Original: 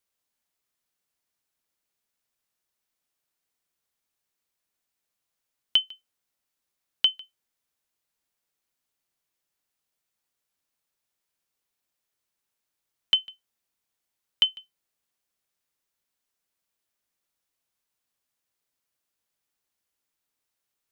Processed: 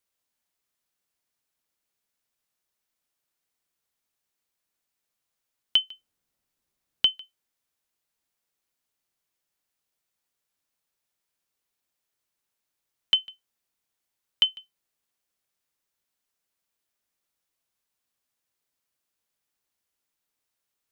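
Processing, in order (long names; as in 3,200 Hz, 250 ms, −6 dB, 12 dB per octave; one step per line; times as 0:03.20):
0:05.91–0:07.12: low-shelf EQ 410 Hz +9 dB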